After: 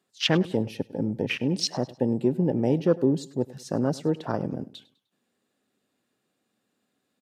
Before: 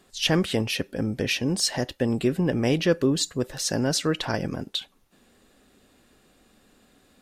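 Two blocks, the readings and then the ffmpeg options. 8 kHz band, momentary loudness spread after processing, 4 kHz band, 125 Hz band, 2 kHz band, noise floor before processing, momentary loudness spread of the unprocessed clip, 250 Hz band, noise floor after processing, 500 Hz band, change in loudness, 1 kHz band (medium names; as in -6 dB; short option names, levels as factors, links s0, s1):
-10.0 dB, 9 LU, -5.0 dB, -1.0 dB, -5.0 dB, -61 dBFS, 7 LU, 0.0 dB, -78 dBFS, 0.0 dB, -1.0 dB, -1.0 dB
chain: -af "afwtdn=0.0398,highpass=f=110:w=0.5412,highpass=f=110:w=1.3066,aecho=1:1:101|202|303:0.1|0.038|0.0144"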